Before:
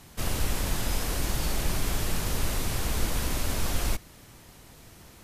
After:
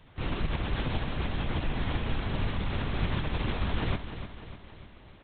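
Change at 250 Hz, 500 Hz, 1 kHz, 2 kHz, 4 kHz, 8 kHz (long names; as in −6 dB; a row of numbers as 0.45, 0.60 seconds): +1.5 dB, −1.0 dB, −0.5 dB, −1.0 dB, −4.5 dB, below −40 dB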